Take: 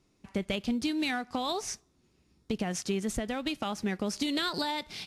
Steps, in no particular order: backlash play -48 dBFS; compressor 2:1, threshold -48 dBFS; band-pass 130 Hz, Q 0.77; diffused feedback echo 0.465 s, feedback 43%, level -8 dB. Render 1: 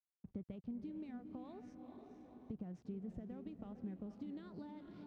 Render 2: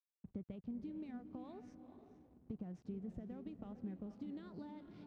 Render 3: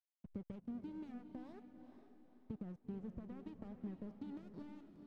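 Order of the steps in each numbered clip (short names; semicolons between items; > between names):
diffused feedback echo > compressor > backlash > band-pass; compressor > diffused feedback echo > backlash > band-pass; compressor > band-pass > backlash > diffused feedback echo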